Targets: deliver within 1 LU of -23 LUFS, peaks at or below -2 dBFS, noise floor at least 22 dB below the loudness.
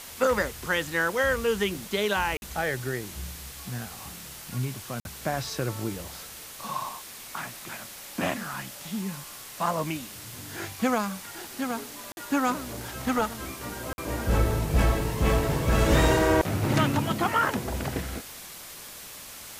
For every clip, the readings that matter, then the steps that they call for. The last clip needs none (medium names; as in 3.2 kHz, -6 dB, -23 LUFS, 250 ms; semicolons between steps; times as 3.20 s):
dropouts 4; longest dropout 51 ms; noise floor -43 dBFS; noise floor target -50 dBFS; loudness -28.0 LUFS; peak level -9.0 dBFS; loudness target -23.0 LUFS
-> interpolate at 2.37/5.00/12.12/13.93 s, 51 ms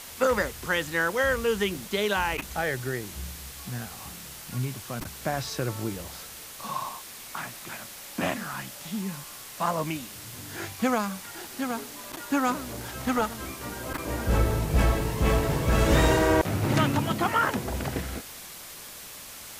dropouts 0; noise floor -43 dBFS; noise floor target -50 dBFS
-> noise reduction 7 dB, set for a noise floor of -43 dBFS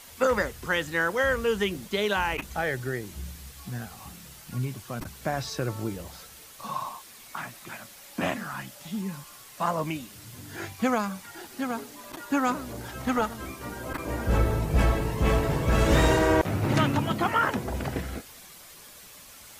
noise floor -48 dBFS; noise floor target -50 dBFS
-> noise reduction 6 dB, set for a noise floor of -48 dBFS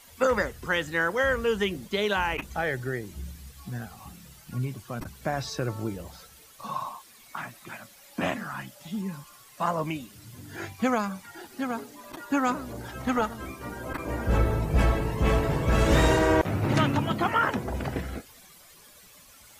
noise floor -53 dBFS; loudness -28.0 LUFS; peak level -9.5 dBFS; loudness target -23.0 LUFS
-> trim +5 dB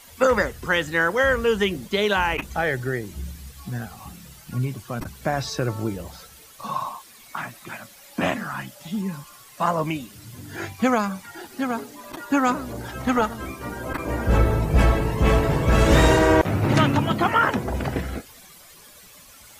loudness -23.0 LUFS; peak level -4.5 dBFS; noise floor -48 dBFS